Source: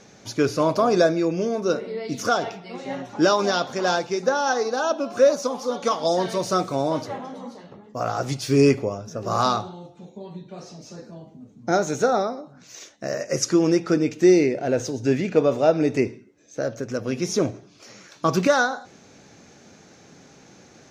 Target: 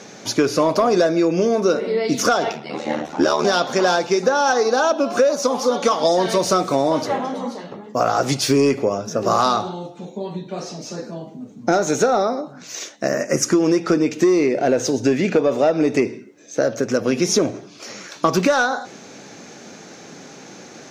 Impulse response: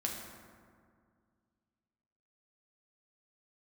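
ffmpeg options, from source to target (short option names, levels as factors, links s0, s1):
-filter_complex "[0:a]asettb=1/sr,asplit=3[s0][s1][s2];[s0]atrim=end=2.524[s3];[s1]atrim=start=2.52:end=3.45,asetpts=PTS-STARTPTS,afade=t=in:d=0.004:c=qsin,afade=t=out:st=0.926:d=0.004:c=qsin,aeval=exprs='val(0)*sin(2*PI*38*n/s)':c=same[s4];[s2]atrim=start=3.446[s5];[s3][s4]acrossfade=d=0.004:c1=hsin:c2=qsin[s6];[s6][s5]acrossfade=d=0.004:c1=qsin:c2=hsin,highpass=180,acontrast=84,asettb=1/sr,asplit=3[s7][s8][s9];[s7]atrim=end=13.084[s10];[s8]atrim=start=13.08:end=13.53,asetpts=PTS-STARTPTS,afade=t=in:d=0.004:c=qsin,afade=t=out:st=0.446:d=0.004:c=qsin,equalizer=f=250:t=o:w=1:g=5,equalizer=f=500:t=o:w=1:g=-6,equalizer=f=4000:t=o:w=1:g=-11[s11];[s9]atrim=start=13.526[s12];[s10][s11]acrossfade=d=0.004:c1=hsin:c2=qsin[s13];[s13][s12]acrossfade=d=0.004:c1=qsin:c2=hsin,acompressor=threshold=0.141:ratio=6,volume=1.5"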